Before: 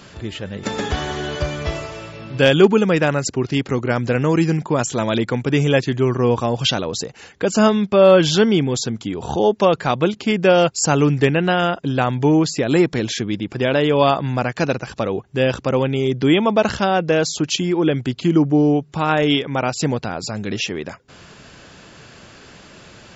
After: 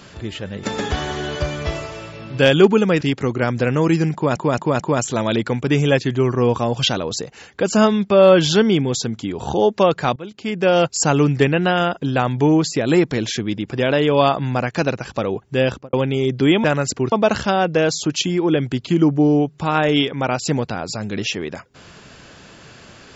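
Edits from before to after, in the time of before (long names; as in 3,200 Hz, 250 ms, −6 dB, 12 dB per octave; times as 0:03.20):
0:03.01–0:03.49: move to 0:16.46
0:04.62: stutter 0.22 s, 4 plays
0:09.98–0:10.68: fade in linear, from −22.5 dB
0:15.48–0:15.75: fade out and dull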